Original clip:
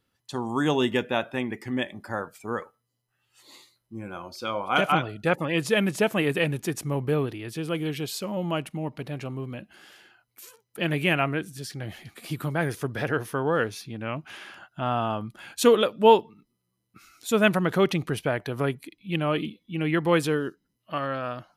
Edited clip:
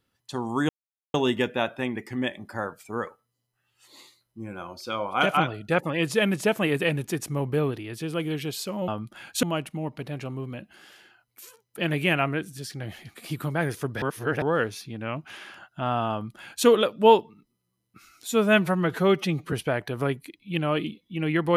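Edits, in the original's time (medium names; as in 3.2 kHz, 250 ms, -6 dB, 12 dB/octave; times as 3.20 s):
0.69 s: insert silence 0.45 s
13.02–13.42 s: reverse
15.11–15.66 s: copy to 8.43 s
17.28–18.11 s: stretch 1.5×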